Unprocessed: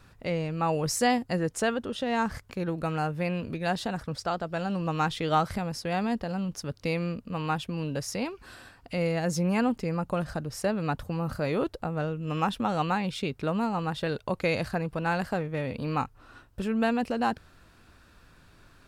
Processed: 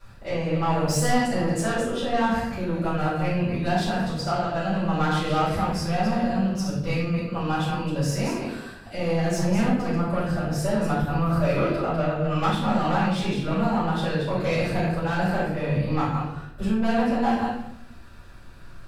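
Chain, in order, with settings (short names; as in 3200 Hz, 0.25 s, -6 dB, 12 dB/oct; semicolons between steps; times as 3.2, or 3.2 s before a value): reverse delay 0.141 s, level -6.5 dB; 11.13–12.47 thirty-one-band EQ 630 Hz +6 dB, 1250 Hz +7 dB, 2500 Hz +5 dB; soft clip -23.5 dBFS, distortion -12 dB; shoebox room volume 160 m³, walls mixed, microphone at 4.8 m; gain -8.5 dB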